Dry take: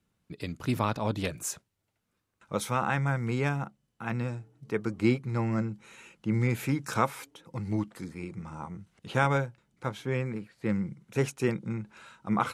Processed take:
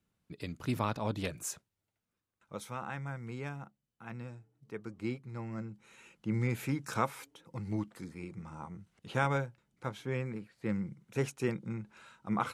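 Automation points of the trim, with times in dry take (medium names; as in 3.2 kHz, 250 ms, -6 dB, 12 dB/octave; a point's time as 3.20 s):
1.50 s -4.5 dB
2.65 s -12 dB
5.50 s -12 dB
6.12 s -5 dB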